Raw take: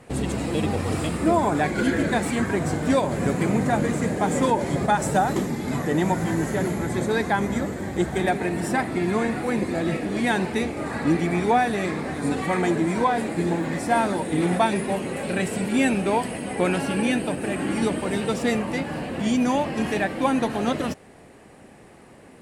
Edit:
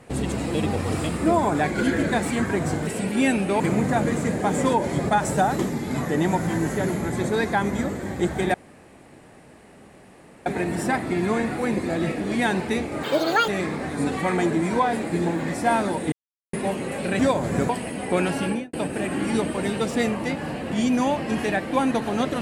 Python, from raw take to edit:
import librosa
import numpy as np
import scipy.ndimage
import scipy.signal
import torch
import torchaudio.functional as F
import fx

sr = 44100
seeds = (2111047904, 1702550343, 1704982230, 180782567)

y = fx.studio_fade_out(x, sr, start_s=16.93, length_s=0.28)
y = fx.edit(y, sr, fx.swap(start_s=2.87, length_s=0.5, other_s=15.44, other_length_s=0.73),
    fx.insert_room_tone(at_s=8.31, length_s=1.92),
    fx.speed_span(start_s=10.88, length_s=0.85, speed=1.88),
    fx.silence(start_s=14.37, length_s=0.41), tone=tone)